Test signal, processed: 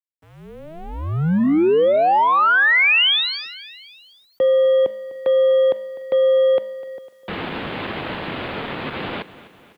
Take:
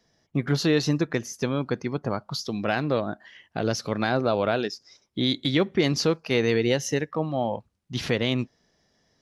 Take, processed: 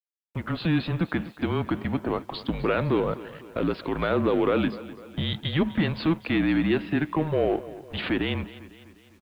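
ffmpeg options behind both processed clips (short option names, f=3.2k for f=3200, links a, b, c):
-filter_complex "[0:a]lowshelf=f=460:g=7,bandreject=f=371.3:t=h:w=4,bandreject=f=742.6:t=h:w=4,bandreject=f=1.1139k:t=h:w=4,dynaudnorm=f=160:g=7:m=13dB,alimiter=limit=-8.5dB:level=0:latency=1:release=53,aresample=11025,aeval=exprs='sgn(val(0))*max(abs(val(0))-0.00473,0)':c=same,aresample=44100,aeval=exprs='0.398*(cos(1*acos(clip(val(0)/0.398,-1,1)))-cos(1*PI/2))+0.0178*(cos(2*acos(clip(val(0)/0.398,-1,1)))-cos(2*PI/2))+0.00316*(cos(3*acos(clip(val(0)/0.398,-1,1)))-cos(3*PI/2))+0.0316*(cos(5*acos(clip(val(0)/0.398,-1,1)))-cos(5*PI/2))':c=same,aeval=exprs='sgn(val(0))*max(abs(val(0))-0.00447,0)':c=same,highpass=f=330:t=q:w=0.5412,highpass=f=330:t=q:w=1.307,lowpass=f=3.6k:t=q:w=0.5176,lowpass=f=3.6k:t=q:w=0.7071,lowpass=f=3.6k:t=q:w=1.932,afreqshift=-160,asplit=2[a][b];[b]aecho=0:1:251|502|753|1004:0.141|0.072|0.0367|0.0187[c];[a][c]amix=inputs=2:normalize=0,acrusher=bits=9:mix=0:aa=0.000001,volume=-2.5dB"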